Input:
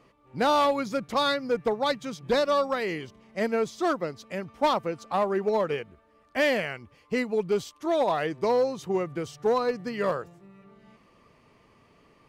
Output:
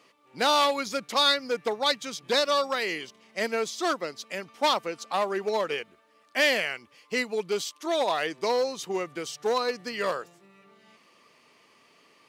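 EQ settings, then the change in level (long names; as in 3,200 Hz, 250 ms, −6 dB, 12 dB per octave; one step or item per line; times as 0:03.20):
high-pass filter 240 Hz 12 dB per octave
parametric band 3,900 Hz +8.5 dB 2.7 octaves
high-shelf EQ 6,100 Hz +9 dB
−3.0 dB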